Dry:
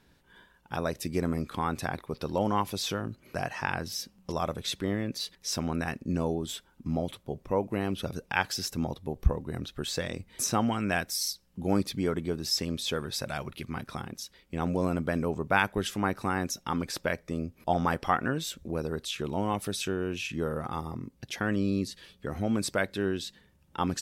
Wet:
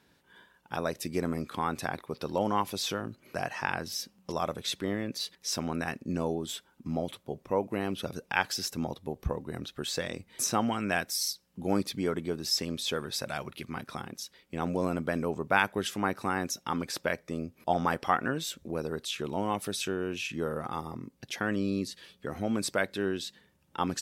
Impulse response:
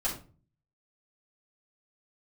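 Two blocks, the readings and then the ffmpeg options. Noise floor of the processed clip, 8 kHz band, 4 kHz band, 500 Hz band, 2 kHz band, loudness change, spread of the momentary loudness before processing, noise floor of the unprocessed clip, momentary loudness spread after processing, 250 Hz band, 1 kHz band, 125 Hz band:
-68 dBFS, 0.0 dB, 0.0 dB, -0.5 dB, 0.0 dB, -1.0 dB, 9 LU, -64 dBFS, 9 LU, -2.0 dB, 0.0 dB, -4.5 dB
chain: -af "highpass=f=180:p=1"

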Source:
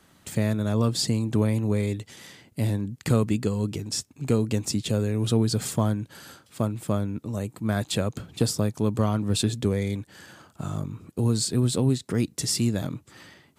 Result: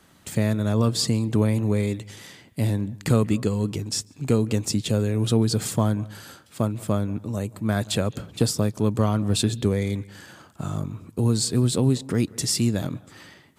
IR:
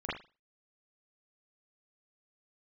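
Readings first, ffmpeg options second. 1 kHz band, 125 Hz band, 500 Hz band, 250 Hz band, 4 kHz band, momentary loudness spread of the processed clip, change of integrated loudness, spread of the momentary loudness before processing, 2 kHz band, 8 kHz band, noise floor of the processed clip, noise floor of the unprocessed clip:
+2.0 dB, +2.0 dB, +2.0 dB, +2.0 dB, +2.0 dB, 11 LU, +2.0 dB, 11 LU, +2.0 dB, +2.0 dB, -55 dBFS, -60 dBFS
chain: -filter_complex "[0:a]asplit=2[s0][s1];[1:a]atrim=start_sample=2205,adelay=141[s2];[s1][s2]afir=irnorm=-1:irlink=0,volume=0.0473[s3];[s0][s3]amix=inputs=2:normalize=0,volume=1.26"

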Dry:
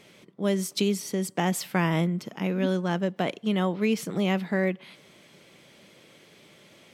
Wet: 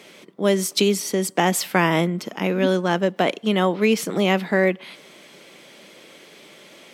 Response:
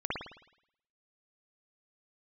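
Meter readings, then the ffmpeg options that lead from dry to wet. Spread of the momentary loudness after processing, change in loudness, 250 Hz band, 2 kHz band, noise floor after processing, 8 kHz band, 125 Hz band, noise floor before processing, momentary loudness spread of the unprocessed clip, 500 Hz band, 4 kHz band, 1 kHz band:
4 LU, +6.5 dB, +4.0 dB, +8.5 dB, -48 dBFS, +8.5 dB, +2.5 dB, -56 dBFS, 4 LU, +8.0 dB, +8.5 dB, +8.5 dB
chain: -af "highpass=240,volume=2.66"

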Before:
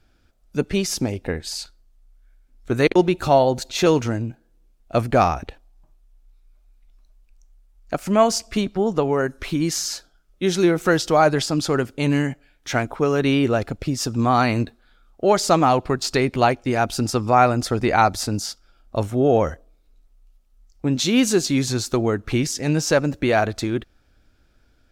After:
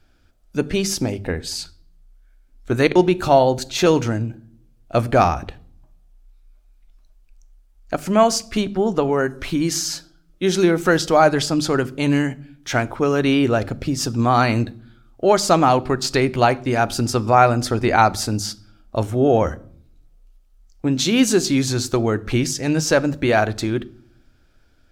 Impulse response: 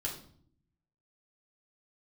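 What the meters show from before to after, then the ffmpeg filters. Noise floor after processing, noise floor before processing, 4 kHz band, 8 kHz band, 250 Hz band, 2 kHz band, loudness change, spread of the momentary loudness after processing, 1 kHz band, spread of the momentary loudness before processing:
-55 dBFS, -60 dBFS, +2.0 dB, +2.0 dB, +1.5 dB, +2.0 dB, +1.5 dB, 11 LU, +1.5 dB, 11 LU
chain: -filter_complex "[0:a]bandreject=f=50:t=h:w=6,bandreject=f=100:t=h:w=6,bandreject=f=150:t=h:w=6,bandreject=f=200:t=h:w=6,bandreject=f=250:t=h:w=6,asplit=2[s0][s1];[1:a]atrim=start_sample=2205[s2];[s1][s2]afir=irnorm=-1:irlink=0,volume=0.158[s3];[s0][s3]amix=inputs=2:normalize=0,volume=1.12"

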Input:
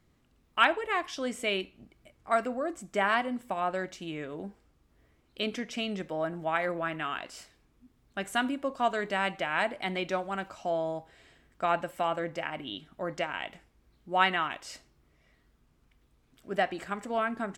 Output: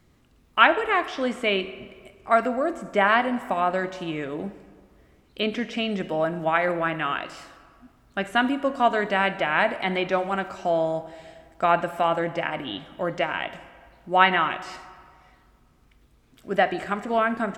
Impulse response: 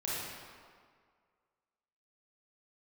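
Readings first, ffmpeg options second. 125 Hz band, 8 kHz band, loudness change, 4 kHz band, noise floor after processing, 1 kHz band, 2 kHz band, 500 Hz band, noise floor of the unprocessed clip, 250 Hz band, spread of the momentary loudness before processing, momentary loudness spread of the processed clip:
+7.5 dB, no reading, +7.0 dB, +5.0 dB, -60 dBFS, +7.5 dB, +7.0 dB, +7.5 dB, -68 dBFS, +7.5 dB, 13 LU, 13 LU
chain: -filter_complex "[0:a]acrossover=split=3800[s0][s1];[s1]acompressor=threshold=0.00141:ratio=4:attack=1:release=60[s2];[s0][s2]amix=inputs=2:normalize=0,asplit=2[s3][s4];[1:a]atrim=start_sample=2205[s5];[s4][s5]afir=irnorm=-1:irlink=0,volume=0.141[s6];[s3][s6]amix=inputs=2:normalize=0,volume=2.11"

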